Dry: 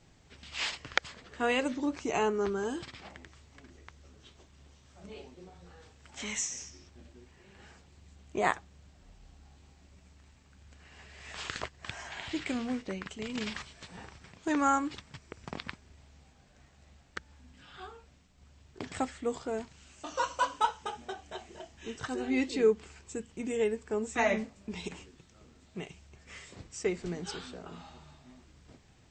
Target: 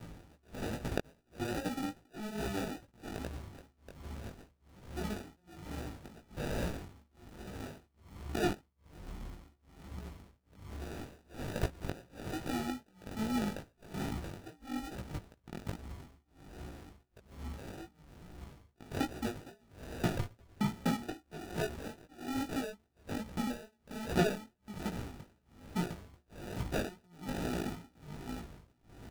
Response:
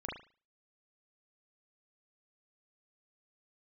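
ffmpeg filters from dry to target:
-filter_complex "[0:a]bandreject=f=5.7k:w=9.4,acompressor=threshold=-42dB:ratio=10,firequalizer=gain_entry='entry(190,0);entry(480,-12);entry(720,7);entry(2600,-7);entry(5200,3)':delay=0.05:min_phase=1,acrusher=samples=41:mix=1:aa=0.000001,flanger=delay=16.5:depth=4:speed=2.4,acrossover=split=5000[a][b];[b]acompressor=threshold=-55dB:ratio=4:attack=1:release=60[c];[a][c]amix=inputs=2:normalize=0,tremolo=f=1.2:d=0.98,volume=16.5dB"

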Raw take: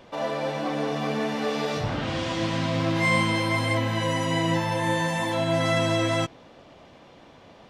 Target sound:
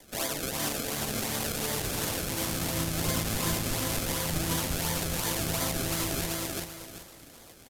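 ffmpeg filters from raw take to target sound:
-filter_complex "[0:a]acrusher=samples=32:mix=1:aa=0.000001:lfo=1:lforange=32:lforate=2.8,asplit=2[a][b];[b]aecho=0:1:386|772|1158|1544:0.473|0.142|0.0426|0.0128[c];[a][c]amix=inputs=2:normalize=0,aresample=32000,aresample=44100,bandreject=f=60:t=h:w=6,bandreject=f=120:t=h:w=6,bandreject=f=180:t=h:w=6,bandreject=f=240:t=h:w=6,acrossover=split=220[d][e];[e]alimiter=limit=-17.5dB:level=0:latency=1:release=103[f];[d][f]amix=inputs=2:normalize=0,asplit=3[g][h][i];[h]asetrate=22050,aresample=44100,atempo=2,volume=-4dB[j];[i]asetrate=52444,aresample=44100,atempo=0.840896,volume=-14dB[k];[g][j][k]amix=inputs=3:normalize=0,crystalizer=i=5:c=0,volume=-8dB"

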